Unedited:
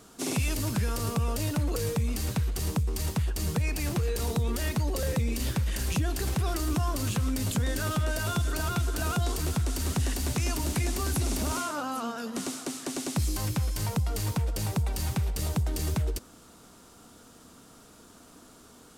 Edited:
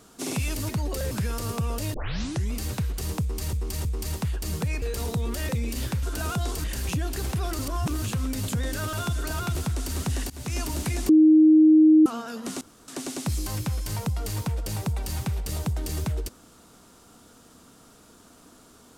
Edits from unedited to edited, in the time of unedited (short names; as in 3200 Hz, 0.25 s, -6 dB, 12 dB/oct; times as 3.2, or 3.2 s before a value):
1.52 tape start 0.58 s
2.79–3.11 loop, 3 plays
3.76–4.04 cut
4.71–5.13 move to 0.69
6.62–7.05 reverse
7.96–8.22 cut
8.84–9.45 move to 5.67
10.2–10.47 fade in, from -23 dB
10.99–11.96 bleep 312 Hz -11.5 dBFS
12.51–12.78 room tone